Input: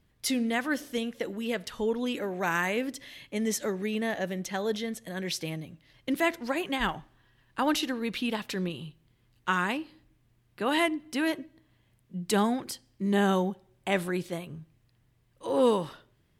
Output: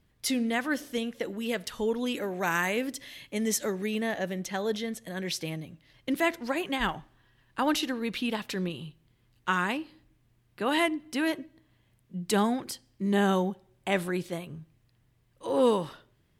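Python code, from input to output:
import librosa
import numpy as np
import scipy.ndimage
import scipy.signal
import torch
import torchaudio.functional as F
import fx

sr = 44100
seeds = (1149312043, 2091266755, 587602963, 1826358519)

y = fx.high_shelf(x, sr, hz=5100.0, db=5.0, at=(1.41, 4.02))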